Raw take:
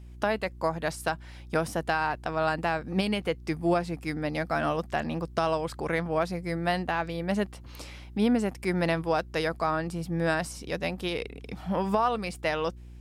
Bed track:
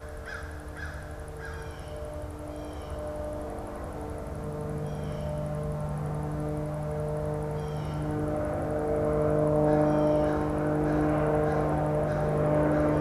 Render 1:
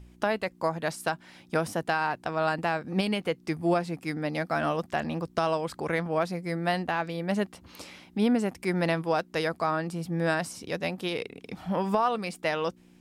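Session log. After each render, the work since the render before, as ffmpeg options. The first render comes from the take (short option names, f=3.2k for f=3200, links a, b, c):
-af "bandreject=f=60:t=h:w=4,bandreject=f=120:t=h:w=4"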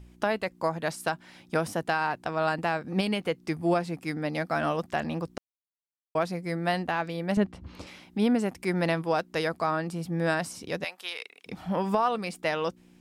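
-filter_complex "[0:a]asettb=1/sr,asplit=3[a][b][c];[a]atrim=end=7.374[d];[b]atrim=start=7.37:end=7.87,asetpts=PTS-STARTPTS,afade=t=in:d=0.004:c=qsin,afade=t=out:st=0.496:d=0.004:c=qsin,aemphasis=mode=reproduction:type=bsi[e];[c]atrim=start=7.866[f];[d][e]acrossfade=d=0.004:c1=hsin:c2=qsin[g];[g][f]acrossfade=d=0.004:c1=qsin:c2=hsin,asettb=1/sr,asplit=3[h][i][j];[h]atrim=end=10.844[k];[i]atrim=start=10.84:end=11.46,asetpts=PTS-STARTPTS,afade=t=in:d=0.004:c=qsin,afade=t=out:st=0.616:d=0.004:c=qsin,highpass=1.1k[l];[j]atrim=start=11.456[m];[k][l]acrossfade=d=0.004:c1=hsin:c2=qsin[n];[n][m]acrossfade=d=0.004:c1=qsin:c2=hsin,asplit=3[o][p][q];[o]atrim=end=5.38,asetpts=PTS-STARTPTS,afade=t=out:st=5.376:d=0.004:c=hsin[r];[p]atrim=start=5.38:end=6.15,asetpts=PTS-STARTPTS,volume=0[s];[q]atrim=start=6.15,asetpts=PTS-STARTPTS,afade=t=in:d=0.004:c=hsin[t];[r][s][t]concat=n=3:v=0:a=1"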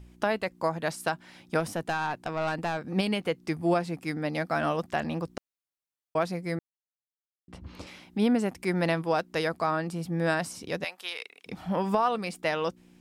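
-filter_complex "[0:a]asettb=1/sr,asplit=3[a][b][c];[a]atrim=end=1.604[d];[b]atrim=start=1.6:end=2.78,asetpts=PTS-STARTPTS,afade=t=in:d=0.004:c=qsin,afade=t=out:st=1.176:d=0.004:c=qsin,aeval=exprs='(tanh(12.6*val(0)+0.15)-tanh(0.15))/12.6':c=same[e];[c]atrim=start=2.776[f];[d][e]acrossfade=d=0.004:c1=hsin:c2=qsin[g];[g][f]acrossfade=d=0.004:c1=qsin:c2=hsin,asplit=3[h][i][j];[h]atrim=end=6.59,asetpts=PTS-STARTPTS,afade=t=out:st=6.586:d=0.004:c=hsin[k];[i]atrim=start=6.59:end=7.48,asetpts=PTS-STARTPTS,volume=0[l];[j]atrim=start=7.48,asetpts=PTS-STARTPTS,afade=t=in:d=0.004:c=hsin[m];[k][l][m]concat=n=3:v=0:a=1"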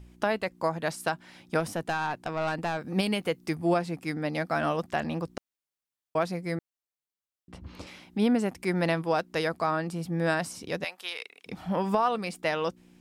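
-filter_complex "[0:a]asettb=1/sr,asplit=3[a][b][c];[a]atrim=end=2.794[d];[b]atrim=start=2.79:end=3.55,asetpts=PTS-STARTPTS,afade=t=in:d=0.004:c=qsin,afade=t=out:st=0.756:d=0.004:c=qsin,highshelf=f=9.2k:g=9.5[e];[c]atrim=start=3.546[f];[d][e]acrossfade=d=0.004:c1=hsin:c2=qsin[g];[g][f]acrossfade=d=0.004:c1=qsin:c2=hsin"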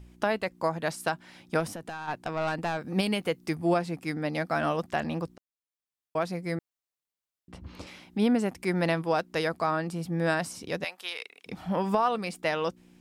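-filter_complex "[0:a]asplit=3[a][b][c];[a]afade=t=out:st=1.67:d=0.02[d];[b]acompressor=threshold=-34dB:ratio=12:attack=3.2:release=140:knee=1:detection=peak,afade=t=in:st=1.67:d=0.02,afade=t=out:st=2.07:d=0.02[e];[c]afade=t=in:st=2.07:d=0.02[f];[d][e][f]amix=inputs=3:normalize=0,asplit=2[g][h];[g]atrim=end=5.37,asetpts=PTS-STARTPTS,afade=t=out:st=5.366:d=0.004:c=hsin:silence=0.141254[i];[h]atrim=start=5.37,asetpts=PTS-STARTPTS,afade=t=in:d=1.06:silence=0.141254[j];[i][j]concat=n=2:v=0:a=1"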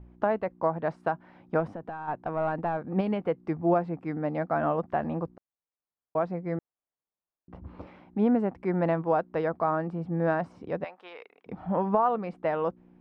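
-af "lowpass=1.2k,equalizer=f=830:t=o:w=1.6:g=3"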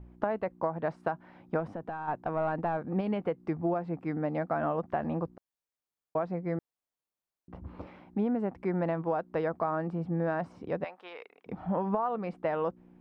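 -af "acompressor=threshold=-26dB:ratio=6"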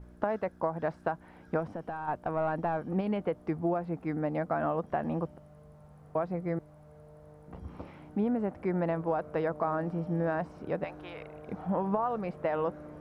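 -filter_complex "[1:a]volume=-22dB[a];[0:a][a]amix=inputs=2:normalize=0"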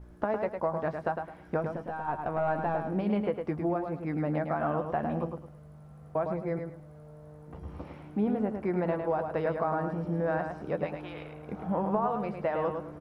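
-filter_complex "[0:a]asplit=2[a][b];[b]adelay=14,volume=-11dB[c];[a][c]amix=inputs=2:normalize=0,aecho=1:1:106|212|318:0.501|0.13|0.0339"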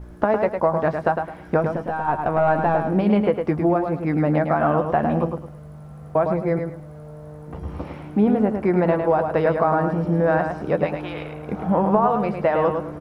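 -af "volume=10.5dB"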